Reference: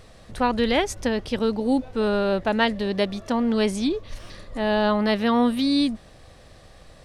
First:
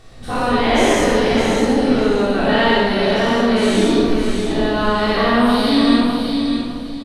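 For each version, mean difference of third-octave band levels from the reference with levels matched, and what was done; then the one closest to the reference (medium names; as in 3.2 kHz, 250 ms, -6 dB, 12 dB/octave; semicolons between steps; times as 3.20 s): 9.5 dB: every event in the spectrogram widened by 240 ms; feedback delay 607 ms, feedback 25%, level -6 dB; simulated room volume 1400 m³, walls mixed, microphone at 3.5 m; trim -6 dB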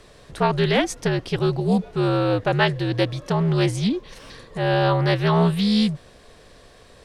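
5.5 dB: high-pass 75 Hz; frequency shift -71 Hz; loudspeaker Doppler distortion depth 0.16 ms; trim +2 dB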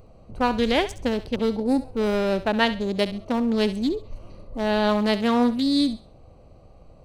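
3.5 dB: local Wiener filter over 25 samples; treble shelf 5 kHz +8.5 dB; on a send: thinning echo 67 ms, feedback 31%, high-pass 930 Hz, level -11.5 dB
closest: third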